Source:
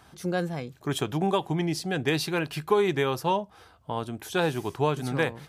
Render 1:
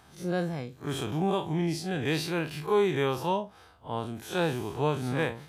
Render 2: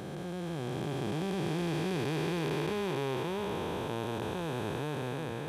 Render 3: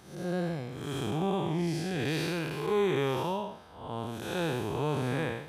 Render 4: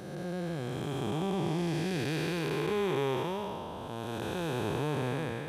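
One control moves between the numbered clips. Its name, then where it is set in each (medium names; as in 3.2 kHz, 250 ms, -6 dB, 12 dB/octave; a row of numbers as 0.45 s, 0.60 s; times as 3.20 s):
spectral blur, width: 84 ms, 1580 ms, 245 ms, 613 ms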